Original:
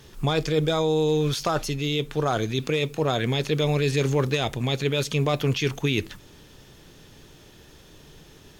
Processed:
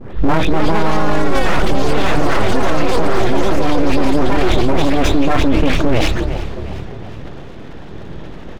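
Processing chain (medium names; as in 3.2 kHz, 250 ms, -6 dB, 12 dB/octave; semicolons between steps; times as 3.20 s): delay that grows with frequency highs late, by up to 252 ms; low-pass 2.1 kHz 12 dB/octave; bass shelf 440 Hz +8 dB; full-wave rectifier; ever faster or slower copies 346 ms, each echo +5 st, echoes 3; frequency-shifting echo 360 ms, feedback 48%, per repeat +35 Hz, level -16.5 dB; loudness maximiser +17 dB; decay stretcher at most 25 dB/s; trim -2.5 dB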